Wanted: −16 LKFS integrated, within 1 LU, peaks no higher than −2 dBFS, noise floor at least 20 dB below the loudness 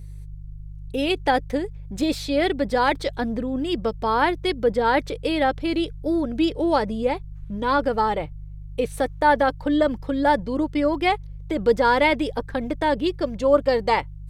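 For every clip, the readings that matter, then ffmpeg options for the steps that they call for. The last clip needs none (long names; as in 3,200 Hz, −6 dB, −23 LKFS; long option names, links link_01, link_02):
mains hum 50 Hz; hum harmonics up to 150 Hz; level of the hum −34 dBFS; integrated loudness −22.5 LKFS; sample peak −5.0 dBFS; target loudness −16.0 LKFS
→ -af "bandreject=frequency=50:width_type=h:width=4,bandreject=frequency=100:width_type=h:width=4,bandreject=frequency=150:width_type=h:width=4"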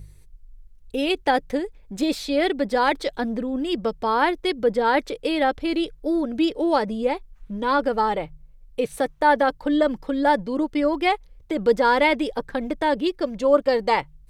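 mains hum none found; integrated loudness −23.0 LKFS; sample peak −5.0 dBFS; target loudness −16.0 LKFS
→ -af "volume=7dB,alimiter=limit=-2dB:level=0:latency=1"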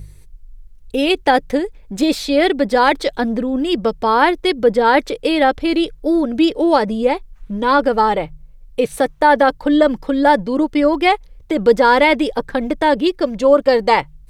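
integrated loudness −16.0 LKFS; sample peak −2.0 dBFS; background noise floor −43 dBFS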